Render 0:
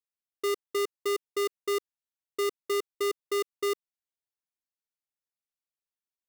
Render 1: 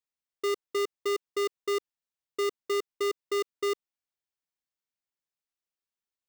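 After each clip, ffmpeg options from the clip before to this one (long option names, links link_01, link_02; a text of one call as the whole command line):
ffmpeg -i in.wav -af "equalizer=frequency=12000:width=1.7:gain=-11.5" out.wav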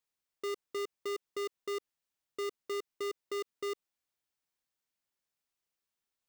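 ffmpeg -i in.wav -af "alimiter=level_in=12dB:limit=-24dB:level=0:latency=1,volume=-12dB,volume=3.5dB" out.wav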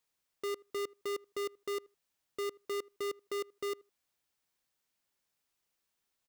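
ffmpeg -i in.wav -filter_complex "[0:a]asoftclip=type=tanh:threshold=-39.5dB,asplit=2[link_01][link_02];[link_02]adelay=79,lowpass=frequency=1200:poles=1,volume=-22.5dB,asplit=2[link_03][link_04];[link_04]adelay=79,lowpass=frequency=1200:poles=1,volume=0.15[link_05];[link_01][link_03][link_05]amix=inputs=3:normalize=0,volume=5.5dB" out.wav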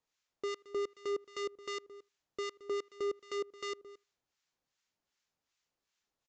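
ffmpeg -i in.wav -filter_complex "[0:a]aecho=1:1:221:0.133,aresample=16000,aresample=44100,acrossover=split=1100[link_01][link_02];[link_01]aeval=exprs='val(0)*(1-0.7/2+0.7/2*cos(2*PI*2.6*n/s))':channel_layout=same[link_03];[link_02]aeval=exprs='val(0)*(1-0.7/2-0.7/2*cos(2*PI*2.6*n/s))':channel_layout=same[link_04];[link_03][link_04]amix=inputs=2:normalize=0,volume=3dB" out.wav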